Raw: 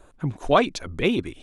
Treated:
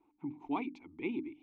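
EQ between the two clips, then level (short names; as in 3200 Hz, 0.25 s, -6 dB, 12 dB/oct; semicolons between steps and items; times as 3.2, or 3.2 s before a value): vowel filter u; LPF 4000 Hz 6 dB/oct; notches 50/100/150/200/250/300 Hz; -2.5 dB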